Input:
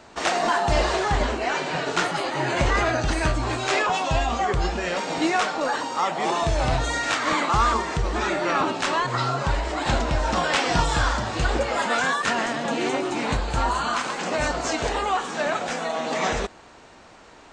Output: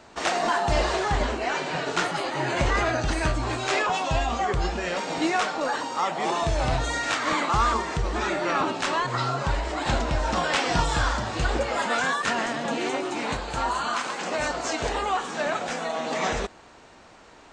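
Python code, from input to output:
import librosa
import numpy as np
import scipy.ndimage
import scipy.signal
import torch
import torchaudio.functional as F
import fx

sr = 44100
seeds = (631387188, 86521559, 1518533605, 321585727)

y = fx.low_shelf(x, sr, hz=150.0, db=-9.5, at=(12.78, 14.8))
y = F.gain(torch.from_numpy(y), -2.0).numpy()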